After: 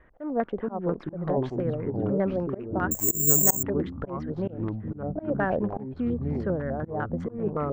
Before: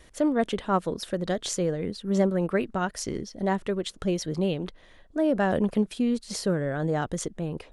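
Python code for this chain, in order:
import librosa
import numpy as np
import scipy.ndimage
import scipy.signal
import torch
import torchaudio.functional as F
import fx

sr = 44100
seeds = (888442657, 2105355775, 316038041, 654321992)

y = fx.wiener(x, sr, points=9)
y = fx.filter_lfo_lowpass(y, sr, shape='square', hz=5.0, low_hz=740.0, high_hz=1600.0, q=2.0)
y = fx.echo_pitch(y, sr, ms=358, semitones=-5, count=3, db_per_echo=-3.0)
y = fx.auto_swell(y, sr, attack_ms=176.0)
y = fx.resample_bad(y, sr, factor=6, down='none', up='zero_stuff', at=(2.91, 3.63))
y = F.gain(torch.from_numpy(y), -4.0).numpy()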